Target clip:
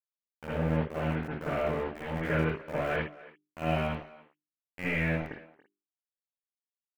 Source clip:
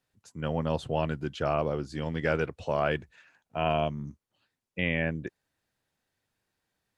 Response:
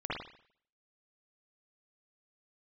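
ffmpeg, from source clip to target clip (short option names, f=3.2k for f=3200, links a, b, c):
-filter_complex "[0:a]flanger=delay=3.6:depth=2.5:regen=-85:speed=0.37:shape=triangular,equalizer=f=1k:w=2.7:g=-14.5,aeval=exprs='val(0)*gte(abs(val(0)),0.0237)':c=same,highshelf=f=2.8k:t=q:w=1.5:g=-6.5,bandreject=f=50:t=h:w=6,bandreject=f=100:t=h:w=6,bandreject=f=150:t=h:w=6,bandreject=f=200:t=h:w=6,bandreject=f=250:t=h:w=6,bandreject=f=300:t=h:w=6,bandreject=f=350:t=h:w=6,bandreject=f=400:t=h:w=6,asplit=2[a][b];[b]adelay=280,highpass=300,lowpass=3.4k,asoftclip=type=hard:threshold=-27.5dB,volume=-18dB[c];[a][c]amix=inputs=2:normalize=0[d];[1:a]atrim=start_sample=2205,atrim=end_sample=6174[e];[d][e]afir=irnorm=-1:irlink=0"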